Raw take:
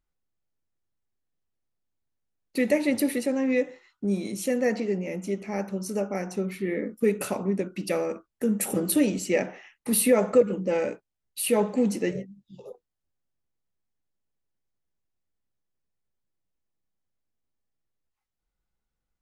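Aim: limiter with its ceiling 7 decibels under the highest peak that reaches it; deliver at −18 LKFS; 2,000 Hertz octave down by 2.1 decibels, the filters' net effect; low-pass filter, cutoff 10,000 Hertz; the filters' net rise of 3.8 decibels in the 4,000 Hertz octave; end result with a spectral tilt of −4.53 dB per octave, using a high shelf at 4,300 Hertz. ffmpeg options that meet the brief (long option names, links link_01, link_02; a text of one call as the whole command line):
ffmpeg -i in.wav -af "lowpass=10000,equalizer=frequency=2000:width_type=o:gain=-4.5,equalizer=frequency=4000:width_type=o:gain=3,highshelf=frequency=4300:gain=5.5,volume=10dB,alimiter=limit=-6dB:level=0:latency=1" out.wav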